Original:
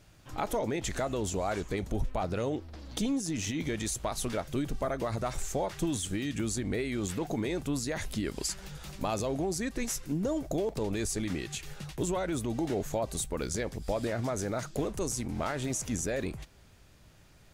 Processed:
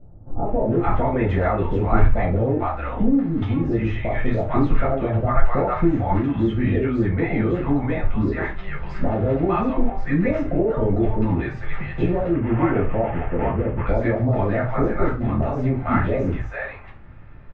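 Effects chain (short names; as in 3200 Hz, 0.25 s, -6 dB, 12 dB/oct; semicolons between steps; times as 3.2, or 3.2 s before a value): 11.86–13.38 CVSD 16 kbps; LPF 2100 Hz 24 dB/oct; bands offset in time lows, highs 0.45 s, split 720 Hz; reverb, pre-delay 4 ms, DRR -5 dB; gain +5.5 dB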